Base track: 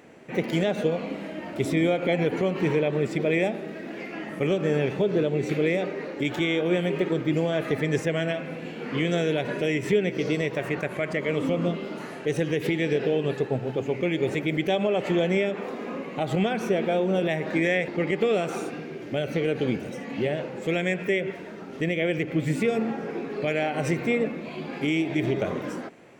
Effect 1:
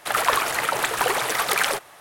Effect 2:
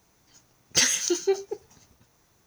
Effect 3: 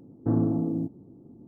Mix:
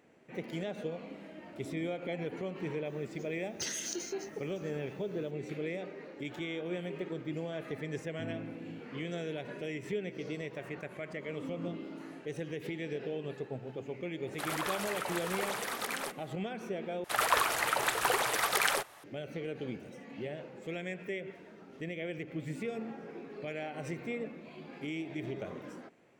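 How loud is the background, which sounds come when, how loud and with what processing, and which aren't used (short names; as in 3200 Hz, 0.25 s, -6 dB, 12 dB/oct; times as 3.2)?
base track -13.5 dB
2.85 add 2 -6 dB + compressor, threshold -28 dBFS
7.93 add 3 -17 dB
11.33 add 3 -13 dB + vowel filter u
14.33 add 1 -12.5 dB + limiter -11.5 dBFS
17.04 replace with 1 -7 dB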